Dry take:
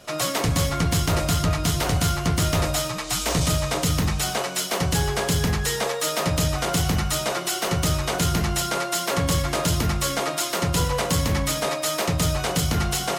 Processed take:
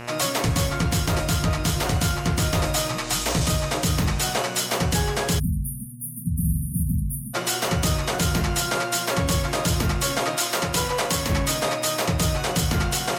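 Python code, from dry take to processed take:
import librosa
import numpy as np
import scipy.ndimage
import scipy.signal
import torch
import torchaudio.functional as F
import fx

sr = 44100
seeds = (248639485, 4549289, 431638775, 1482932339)

y = fx.dmg_buzz(x, sr, base_hz=120.0, harmonics=24, level_db=-38.0, tilt_db=-3, odd_only=False)
y = fx.low_shelf(y, sr, hz=180.0, db=-11.0, at=(10.36, 11.3))
y = fx.rider(y, sr, range_db=10, speed_s=0.5)
y = fx.room_flutter(y, sr, wall_m=7.5, rt60_s=1.0, at=(6.39, 6.83))
y = fx.spec_erase(y, sr, start_s=5.39, length_s=1.95, low_hz=270.0, high_hz=9000.0)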